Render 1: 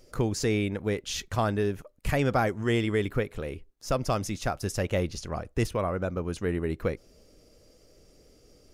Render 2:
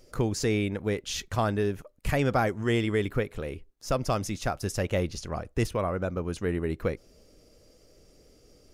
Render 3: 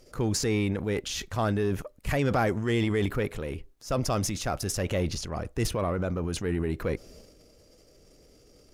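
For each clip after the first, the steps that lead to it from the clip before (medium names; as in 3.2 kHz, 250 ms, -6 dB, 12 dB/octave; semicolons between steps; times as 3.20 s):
no audible change
transient shaper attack -3 dB, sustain +8 dB; Chebyshev shaper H 6 -29 dB, 8 -27 dB, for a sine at -12 dBFS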